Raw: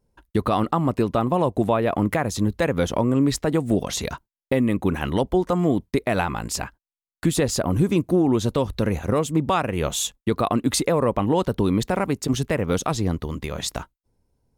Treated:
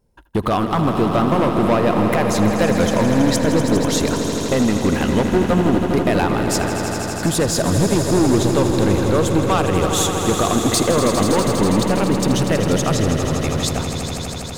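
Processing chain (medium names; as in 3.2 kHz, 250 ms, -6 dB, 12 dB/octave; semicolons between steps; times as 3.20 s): hard clipper -17.5 dBFS, distortion -11 dB; echo with a slow build-up 81 ms, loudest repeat 5, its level -10 dB; trim +4.5 dB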